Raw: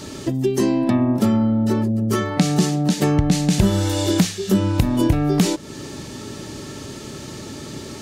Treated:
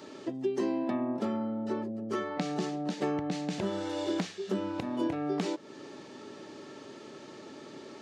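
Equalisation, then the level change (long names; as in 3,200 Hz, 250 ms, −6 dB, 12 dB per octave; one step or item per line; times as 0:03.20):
high-pass filter 350 Hz 12 dB per octave
head-to-tape spacing loss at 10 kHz 32 dB
high-shelf EQ 5,800 Hz +12 dB
−6.5 dB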